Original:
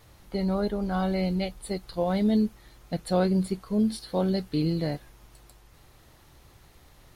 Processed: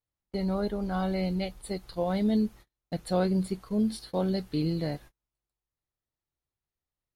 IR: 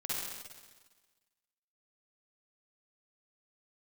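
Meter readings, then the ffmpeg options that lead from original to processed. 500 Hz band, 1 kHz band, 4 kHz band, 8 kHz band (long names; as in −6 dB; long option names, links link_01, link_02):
−2.5 dB, −2.5 dB, −2.5 dB, −3.0 dB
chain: -af "agate=range=-36dB:threshold=-43dB:ratio=16:detection=peak,volume=-2.5dB"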